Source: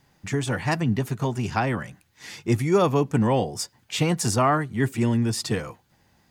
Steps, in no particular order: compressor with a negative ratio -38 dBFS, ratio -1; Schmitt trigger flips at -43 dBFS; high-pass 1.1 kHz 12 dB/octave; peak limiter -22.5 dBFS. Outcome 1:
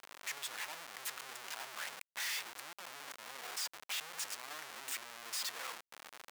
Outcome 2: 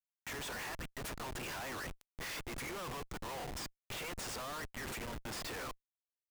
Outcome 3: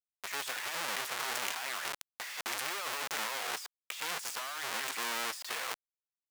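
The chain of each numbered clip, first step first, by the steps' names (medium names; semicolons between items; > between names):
compressor with a negative ratio > peak limiter > Schmitt trigger > high-pass; peak limiter > high-pass > compressor with a negative ratio > Schmitt trigger; Schmitt trigger > high-pass > peak limiter > compressor with a negative ratio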